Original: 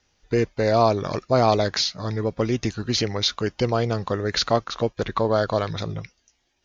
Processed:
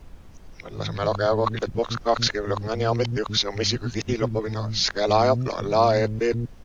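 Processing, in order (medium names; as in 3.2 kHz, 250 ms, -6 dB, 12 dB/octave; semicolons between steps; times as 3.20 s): reverse the whole clip; bands offset in time highs, lows 130 ms, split 240 Hz; added noise brown -43 dBFS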